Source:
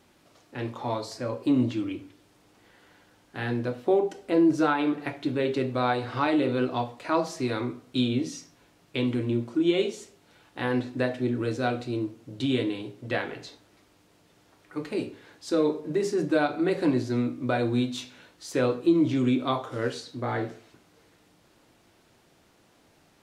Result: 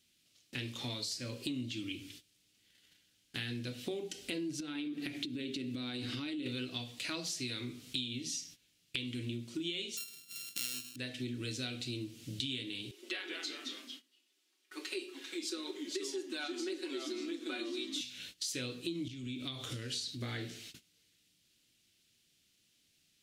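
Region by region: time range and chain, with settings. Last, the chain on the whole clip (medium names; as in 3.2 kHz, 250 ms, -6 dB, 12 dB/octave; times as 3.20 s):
4.60–6.46 s: peaking EQ 280 Hz +12 dB 0.91 oct + compression 5:1, threshold -28 dBFS
9.97–10.96 s: sorted samples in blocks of 32 samples + high-pass 140 Hz + treble shelf 3.2 kHz +9 dB
12.91–18.01 s: rippled Chebyshev high-pass 260 Hz, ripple 9 dB + comb 5.4 ms, depth 95% + ever faster or slower copies 155 ms, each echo -2 st, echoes 3, each echo -6 dB
19.08–20.21 s: bass shelf 130 Hz +9 dB + compression, threshold -35 dBFS
whole clip: gate -54 dBFS, range -18 dB; FFT filter 220 Hz 0 dB, 930 Hz -16 dB, 3 kHz +13 dB; compression 6:1, threshold -38 dBFS; trim +1 dB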